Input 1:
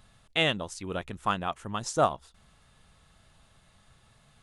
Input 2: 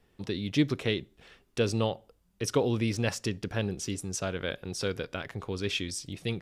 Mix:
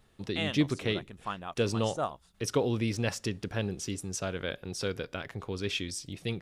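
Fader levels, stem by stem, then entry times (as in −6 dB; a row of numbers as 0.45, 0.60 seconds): −8.5, −1.5 decibels; 0.00, 0.00 seconds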